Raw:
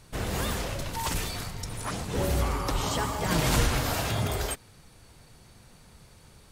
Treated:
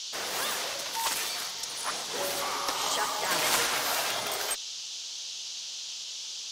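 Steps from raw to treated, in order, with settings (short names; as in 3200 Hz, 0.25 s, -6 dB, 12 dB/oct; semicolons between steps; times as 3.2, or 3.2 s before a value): band noise 2900–6600 Hz -41 dBFS; Bessel high-pass 760 Hz, order 2; added harmonics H 3 -23 dB, 4 -27 dB, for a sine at -14.5 dBFS; gain +4.5 dB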